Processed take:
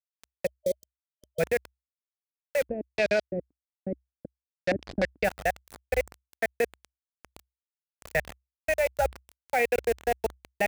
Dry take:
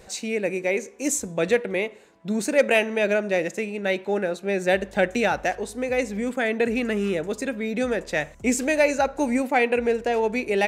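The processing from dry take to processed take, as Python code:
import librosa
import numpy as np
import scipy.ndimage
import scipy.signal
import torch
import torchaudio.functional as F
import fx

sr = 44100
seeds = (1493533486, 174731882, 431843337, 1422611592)

y = fx.fixed_phaser(x, sr, hz=1100.0, stages=6)
y = fx.level_steps(y, sr, step_db=24)
y = fx.low_shelf(y, sr, hz=180.0, db=11.5)
y = fx.quant_dither(y, sr, seeds[0], bits=6, dither='none')
y = fx.spec_box(y, sr, start_s=0.46, length_s=0.94, low_hz=620.0, high_hz=3100.0, gain_db=-25)
y = fx.filter_lfo_lowpass(y, sr, shape='square', hz=fx.line((2.62, 1.0), (5.23, 6.5)), low_hz=290.0, high_hz=4500.0, q=2.9, at=(2.62, 5.23), fade=0.02)
y = fx.peak_eq(y, sr, hz=64.0, db=8.5, octaves=0.29)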